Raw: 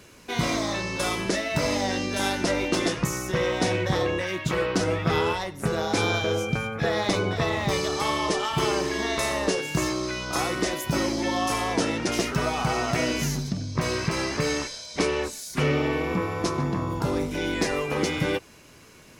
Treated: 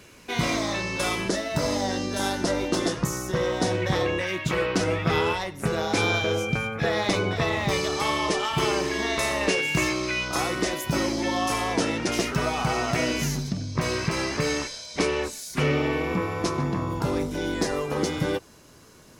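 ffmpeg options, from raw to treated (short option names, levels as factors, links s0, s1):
-af "asetnsamples=n=441:p=0,asendcmd='1.28 equalizer g -7.5;3.82 equalizer g 3;9.41 equalizer g 10.5;10.28 equalizer g 1;17.23 equalizer g -8.5',equalizer=f=2400:t=o:w=0.65:g=2.5"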